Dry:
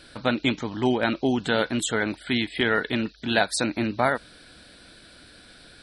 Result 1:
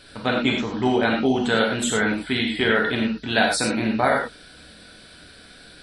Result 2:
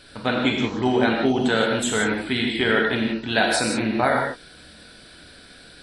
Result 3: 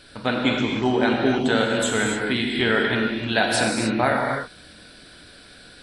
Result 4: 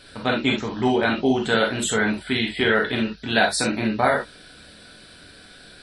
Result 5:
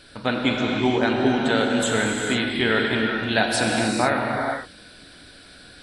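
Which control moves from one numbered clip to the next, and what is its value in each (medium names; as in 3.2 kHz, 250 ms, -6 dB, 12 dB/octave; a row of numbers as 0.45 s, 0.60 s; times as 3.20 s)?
gated-style reverb, gate: 130 ms, 200 ms, 320 ms, 90 ms, 510 ms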